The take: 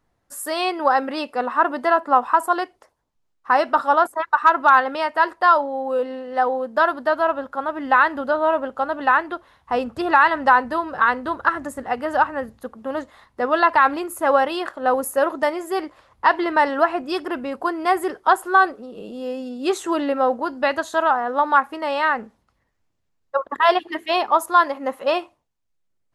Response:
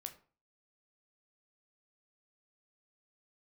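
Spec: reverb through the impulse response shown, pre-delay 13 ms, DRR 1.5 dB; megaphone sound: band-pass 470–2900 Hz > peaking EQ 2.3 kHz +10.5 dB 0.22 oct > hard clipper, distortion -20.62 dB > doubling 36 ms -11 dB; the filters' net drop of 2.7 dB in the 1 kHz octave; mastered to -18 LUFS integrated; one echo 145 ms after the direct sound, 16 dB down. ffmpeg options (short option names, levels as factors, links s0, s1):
-filter_complex "[0:a]equalizer=f=1000:t=o:g=-3,aecho=1:1:145:0.158,asplit=2[s0][s1];[1:a]atrim=start_sample=2205,adelay=13[s2];[s1][s2]afir=irnorm=-1:irlink=0,volume=1.33[s3];[s0][s3]amix=inputs=2:normalize=0,highpass=470,lowpass=2900,equalizer=f=2300:t=o:w=0.22:g=10.5,asoftclip=type=hard:threshold=0.398,asplit=2[s4][s5];[s5]adelay=36,volume=0.282[s6];[s4][s6]amix=inputs=2:normalize=0,volume=1.33"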